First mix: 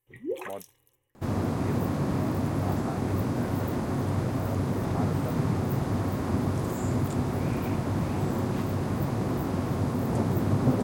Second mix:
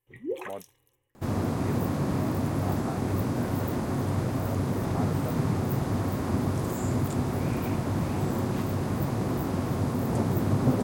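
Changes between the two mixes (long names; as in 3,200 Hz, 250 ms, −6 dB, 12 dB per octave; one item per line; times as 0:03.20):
second sound: add high-shelf EQ 6,600 Hz +8 dB
master: add high-shelf EQ 7,100 Hz −4.5 dB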